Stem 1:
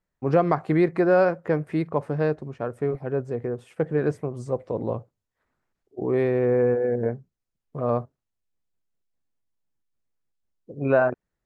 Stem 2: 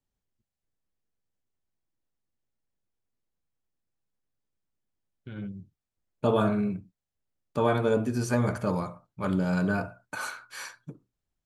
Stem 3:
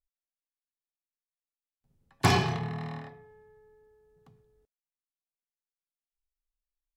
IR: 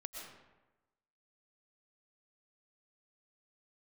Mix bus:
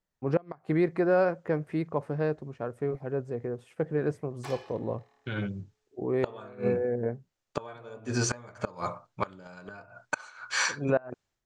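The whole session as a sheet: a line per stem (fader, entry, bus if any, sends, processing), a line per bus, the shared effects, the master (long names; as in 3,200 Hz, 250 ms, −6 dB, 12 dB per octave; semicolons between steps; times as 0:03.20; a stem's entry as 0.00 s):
−5.0 dB, 0.00 s, no send, no processing
−2.0 dB, 0.00 s, no send, automatic gain control gain up to 16 dB; elliptic band-pass filter 100–7,000 Hz, stop band 40 dB; parametric band 180 Hz −11 dB 2.1 octaves
−12.0 dB, 2.20 s, no send, Butterworth high-pass 290 Hz; automatic ducking −13 dB, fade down 1.30 s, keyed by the second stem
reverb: not used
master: gate with flip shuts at −14 dBFS, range −25 dB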